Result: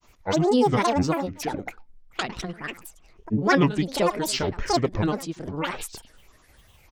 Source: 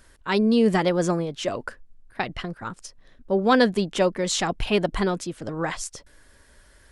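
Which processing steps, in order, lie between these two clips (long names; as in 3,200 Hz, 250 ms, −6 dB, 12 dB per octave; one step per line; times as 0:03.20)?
single-tap delay 102 ms −16 dB
granular cloud, spray 15 ms, pitch spread up and down by 12 semitones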